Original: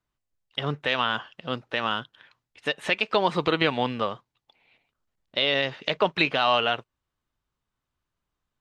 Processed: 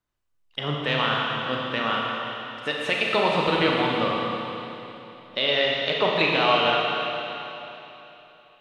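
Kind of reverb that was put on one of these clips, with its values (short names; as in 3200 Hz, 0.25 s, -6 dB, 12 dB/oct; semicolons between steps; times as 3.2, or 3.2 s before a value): Schroeder reverb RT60 3.3 s, combs from 27 ms, DRR -2.5 dB; gain -1.5 dB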